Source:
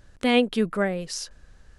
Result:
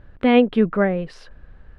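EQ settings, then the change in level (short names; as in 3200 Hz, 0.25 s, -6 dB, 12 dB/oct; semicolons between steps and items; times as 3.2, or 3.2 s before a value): air absorption 490 m; +7.0 dB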